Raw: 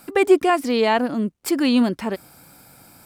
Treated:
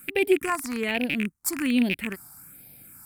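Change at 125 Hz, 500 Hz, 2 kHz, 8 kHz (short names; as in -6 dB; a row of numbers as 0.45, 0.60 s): -4.0, -8.0, -1.0, +2.0 dB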